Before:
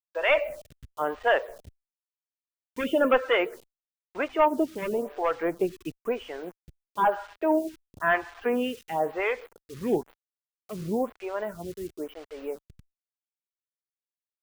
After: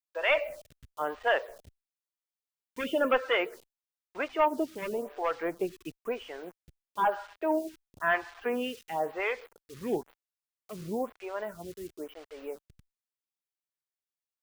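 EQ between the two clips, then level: low shelf 490 Hz -4.5 dB; dynamic EQ 4600 Hz, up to +4 dB, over -49 dBFS, Q 1.6; -2.5 dB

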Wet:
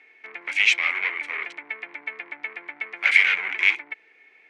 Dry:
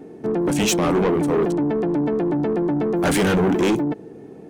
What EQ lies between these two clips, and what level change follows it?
resonant high-pass 2200 Hz, resonance Q 10; LPF 3200 Hz 12 dB/oct; 0.0 dB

